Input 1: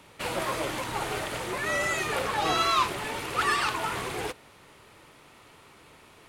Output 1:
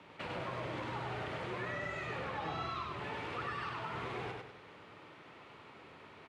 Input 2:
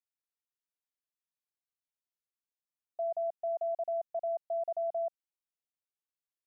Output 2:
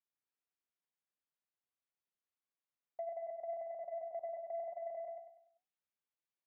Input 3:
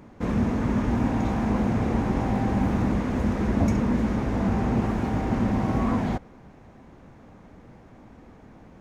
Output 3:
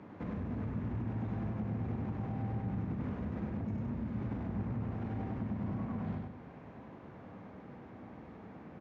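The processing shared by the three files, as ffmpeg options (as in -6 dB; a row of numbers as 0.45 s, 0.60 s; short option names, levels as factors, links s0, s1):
-filter_complex "[0:a]acrossover=split=160[s0][s1];[s1]acompressor=threshold=0.0141:ratio=6[s2];[s0][s2]amix=inputs=2:normalize=0,alimiter=level_in=1.19:limit=0.0631:level=0:latency=1:release=46,volume=0.841,flanger=delay=9.7:depth=3.6:regen=-68:speed=1.9:shape=triangular,asoftclip=type=tanh:threshold=0.0251,highpass=100,lowpass=3100,asplit=2[s3][s4];[s4]aecho=0:1:98|196|294|392|490:0.708|0.283|0.113|0.0453|0.0181[s5];[s3][s5]amix=inputs=2:normalize=0,volume=1.26"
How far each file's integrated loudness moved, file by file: -12.0 LU, -8.5 LU, -13.0 LU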